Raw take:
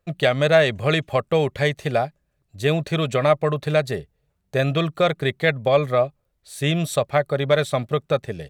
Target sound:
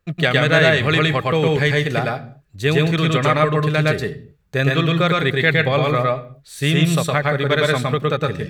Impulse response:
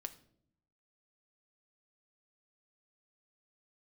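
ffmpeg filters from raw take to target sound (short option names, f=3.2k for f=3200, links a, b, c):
-filter_complex "[0:a]equalizer=f=630:t=o:w=0.67:g=-9,equalizer=f=1.6k:t=o:w=0.67:g=3,equalizer=f=10k:t=o:w=0.67:g=-4,asplit=2[a][b];[1:a]atrim=start_sample=2205,afade=t=out:st=0.29:d=0.01,atrim=end_sample=13230,adelay=112[c];[b][c]afir=irnorm=-1:irlink=0,volume=3dB[d];[a][d]amix=inputs=2:normalize=0,volume=3dB"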